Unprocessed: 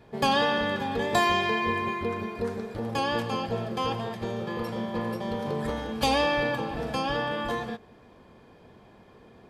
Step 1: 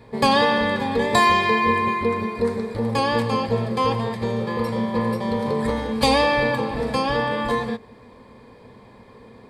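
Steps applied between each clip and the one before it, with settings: ripple EQ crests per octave 0.96, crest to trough 8 dB; gain +5.5 dB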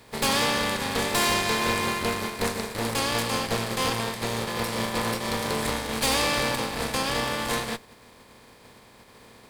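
spectral contrast lowered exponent 0.49; tube stage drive 19 dB, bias 0.8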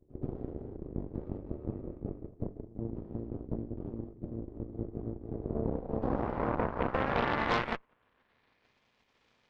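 low-pass sweep 160 Hz -> 2900 Hz, 5.22–8.88; added harmonics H 4 -10 dB, 5 -26 dB, 7 -14 dB, 8 -20 dB, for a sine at -13 dBFS; pre-echo 0.129 s -21 dB; gain -6.5 dB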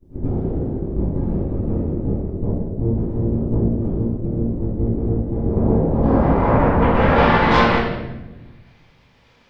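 reverb RT60 1.0 s, pre-delay 4 ms, DRR -15.5 dB; gain -4.5 dB

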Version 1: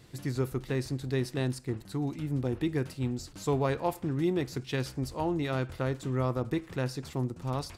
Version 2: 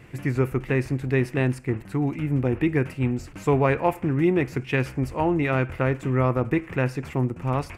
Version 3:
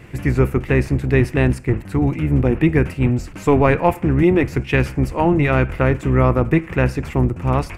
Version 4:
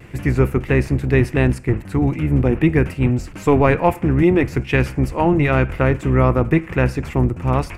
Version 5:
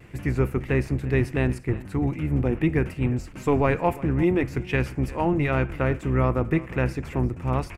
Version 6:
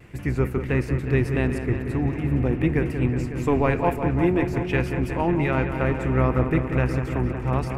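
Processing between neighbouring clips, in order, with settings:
resonant high shelf 3100 Hz -8 dB, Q 3; gain +7.5 dB
octaver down 1 oct, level -4 dB; gain +6 dB
vibrato 0.39 Hz 9.8 cents
echo 0.35 s -19 dB; gain -7 dB
dark delay 0.183 s, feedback 80%, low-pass 3100 Hz, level -9 dB

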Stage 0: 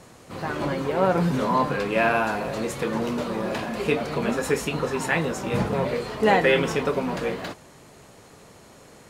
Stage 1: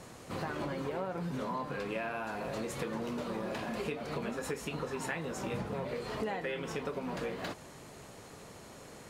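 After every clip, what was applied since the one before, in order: compressor 10:1, threshold -32 dBFS, peak gain reduction 18 dB; gain -1.5 dB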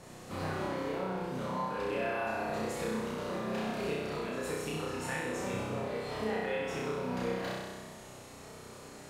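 flutter echo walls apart 5.5 m, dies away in 1.3 s; gain -3.5 dB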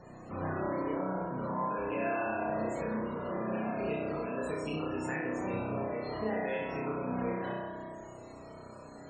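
loudest bins only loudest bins 64; band-limited delay 61 ms, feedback 81%, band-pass 540 Hz, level -6 dB

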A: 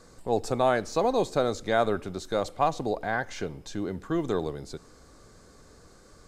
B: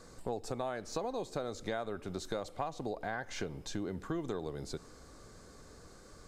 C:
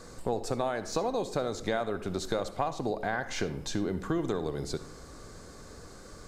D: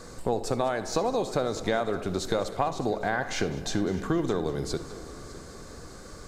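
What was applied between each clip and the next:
compressor 12:1, threshold -32 dBFS, peak gain reduction 15 dB; gain -1 dB
reverb RT60 0.60 s, pre-delay 55 ms, DRR 12.5 dB; gain +6.5 dB
multi-head echo 0.202 s, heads first and third, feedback 43%, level -18.5 dB; gain +3.5 dB

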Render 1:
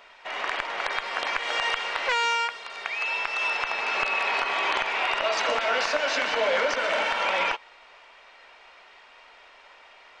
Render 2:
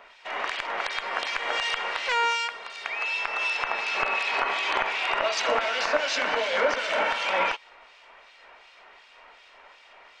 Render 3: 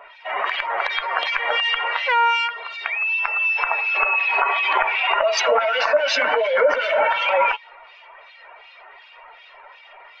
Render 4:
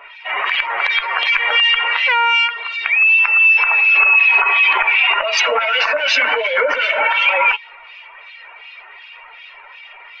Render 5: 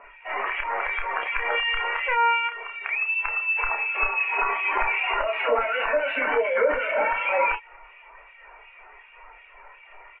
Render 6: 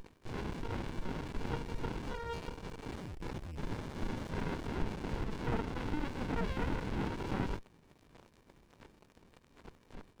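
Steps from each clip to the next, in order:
harmonic tremolo 2.7 Hz, depth 70%, crossover 2300 Hz; gain +3 dB
spectral contrast raised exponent 1.9; gain +7 dB
fifteen-band EQ 160 Hz -9 dB, 630 Hz -7 dB, 2500 Hz +8 dB; in parallel at -0.5 dB: limiter -10.5 dBFS, peak gain reduction 9 dB; on the sum: gain -2.5 dB
steep low-pass 2700 Hz 48 dB/oct; tilt -4 dB/oct; doubler 30 ms -5.5 dB; gain -7 dB
delta modulation 16 kbps, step -35 dBFS; spectral gate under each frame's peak -25 dB strong; running maximum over 65 samples; gain -1.5 dB

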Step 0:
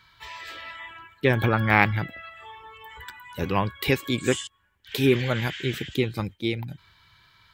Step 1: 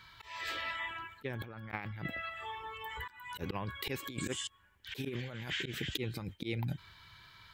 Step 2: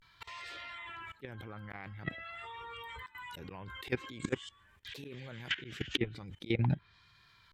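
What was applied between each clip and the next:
auto swell 0.247 s; negative-ratio compressor -35 dBFS, ratio -1; gain -4 dB
level quantiser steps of 18 dB; vibrato 0.46 Hz 90 cents; treble ducked by the level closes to 2200 Hz, closed at -36.5 dBFS; gain +8 dB

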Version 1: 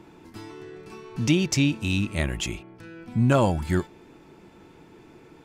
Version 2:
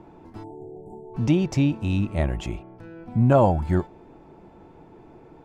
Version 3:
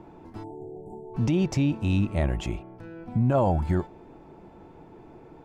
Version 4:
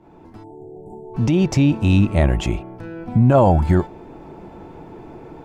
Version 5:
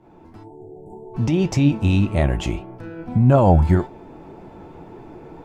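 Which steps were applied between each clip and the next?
tilt -2.5 dB/oct; spectral delete 0.44–1.14, 970–6800 Hz; bell 740 Hz +11 dB 1.3 oct; gain -5.5 dB
limiter -15 dBFS, peak gain reduction 8.5 dB
opening faded in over 1.77 s; upward compressor, threshold -43 dBFS; gain +9 dB
flange 1.8 Hz, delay 7 ms, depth 6.5 ms, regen +66%; gain +2.5 dB

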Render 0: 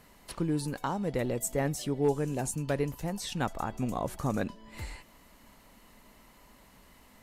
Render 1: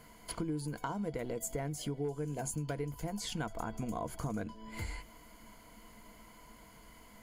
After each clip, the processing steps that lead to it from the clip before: ripple EQ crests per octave 1.8, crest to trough 10 dB; compressor 6:1, threshold -34 dBFS, peak gain reduction 14 dB; bell 3600 Hz -2 dB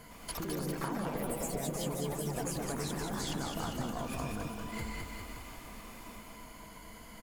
compressor, threshold -41 dBFS, peak gain reduction 9.5 dB; on a send: bouncing-ball echo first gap 0.21 s, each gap 0.9×, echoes 5; on the sum: echoes that change speed 0.109 s, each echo +3 st, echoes 3; gain +4 dB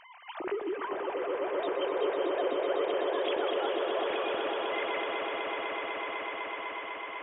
sine-wave speech; swelling echo 0.125 s, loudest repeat 8, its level -7.5 dB

